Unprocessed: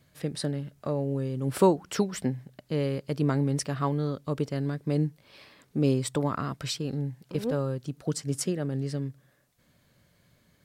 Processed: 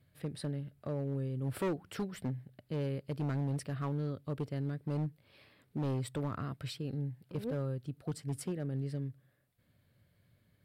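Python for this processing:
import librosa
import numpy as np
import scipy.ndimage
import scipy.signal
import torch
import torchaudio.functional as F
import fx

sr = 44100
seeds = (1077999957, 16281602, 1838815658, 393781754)

y = fx.graphic_eq_15(x, sr, hz=(100, 1000, 6300), db=(9, -4, -12))
y = np.clip(y, -10.0 ** (-22.0 / 20.0), 10.0 ** (-22.0 / 20.0))
y = y * librosa.db_to_amplitude(-8.0)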